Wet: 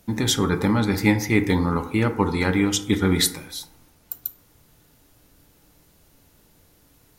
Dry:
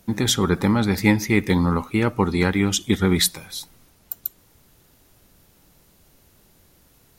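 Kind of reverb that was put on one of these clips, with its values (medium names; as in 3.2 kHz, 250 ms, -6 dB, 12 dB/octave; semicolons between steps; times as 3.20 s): FDN reverb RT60 0.82 s, low-frequency decay 0.95×, high-frequency decay 0.35×, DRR 7 dB; trim -1.5 dB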